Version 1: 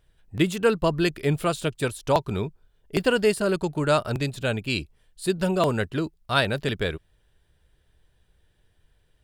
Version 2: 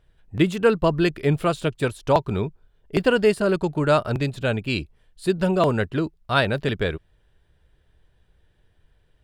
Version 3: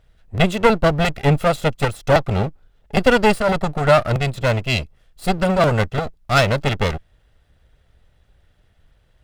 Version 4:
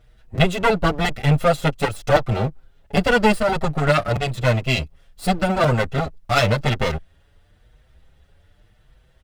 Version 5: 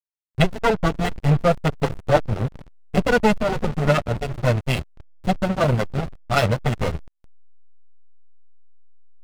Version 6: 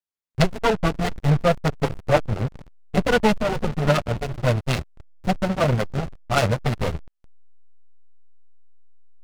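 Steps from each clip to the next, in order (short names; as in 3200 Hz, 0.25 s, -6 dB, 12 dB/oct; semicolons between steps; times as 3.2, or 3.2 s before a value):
high shelf 4700 Hz -10.5 dB; gain +3 dB
minimum comb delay 1.5 ms; gain +5.5 dB
in parallel at -1.5 dB: compressor, threshold -24 dBFS, peak gain reduction 15 dB; on the sum: endless flanger 6.3 ms +0.92 Hz
diffused feedback echo 0.472 s, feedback 45%, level -12 dB; backlash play -14.5 dBFS
noise-modulated delay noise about 1400 Hz, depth 0.05 ms; gain -1 dB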